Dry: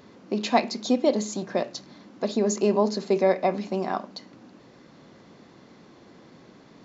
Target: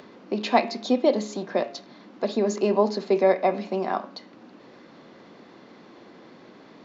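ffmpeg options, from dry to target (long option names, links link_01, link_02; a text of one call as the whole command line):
ffmpeg -i in.wav -filter_complex "[0:a]acompressor=mode=upward:threshold=-43dB:ratio=2.5,acrossover=split=200 5100:gain=0.251 1 0.158[link_01][link_02][link_03];[link_01][link_02][link_03]amix=inputs=3:normalize=0,bandreject=frequency=138.9:width_type=h:width=4,bandreject=frequency=277.8:width_type=h:width=4,bandreject=frequency=416.7:width_type=h:width=4,bandreject=frequency=555.6:width_type=h:width=4,bandreject=frequency=694.5:width_type=h:width=4,bandreject=frequency=833.4:width_type=h:width=4,bandreject=frequency=972.3:width_type=h:width=4,bandreject=frequency=1111.2:width_type=h:width=4,bandreject=frequency=1250.1:width_type=h:width=4,bandreject=frequency=1389:width_type=h:width=4,bandreject=frequency=1527.9:width_type=h:width=4,bandreject=frequency=1666.8:width_type=h:width=4,bandreject=frequency=1805.7:width_type=h:width=4,bandreject=frequency=1944.6:width_type=h:width=4,bandreject=frequency=2083.5:width_type=h:width=4,bandreject=frequency=2222.4:width_type=h:width=4,bandreject=frequency=2361.3:width_type=h:width=4,bandreject=frequency=2500.2:width_type=h:width=4,bandreject=frequency=2639.1:width_type=h:width=4,bandreject=frequency=2778:width_type=h:width=4,bandreject=frequency=2916.9:width_type=h:width=4,bandreject=frequency=3055.8:width_type=h:width=4,bandreject=frequency=3194.7:width_type=h:width=4,bandreject=frequency=3333.6:width_type=h:width=4,bandreject=frequency=3472.5:width_type=h:width=4,bandreject=frequency=3611.4:width_type=h:width=4,bandreject=frequency=3750.3:width_type=h:width=4,bandreject=frequency=3889.2:width_type=h:width=4,volume=2dB" out.wav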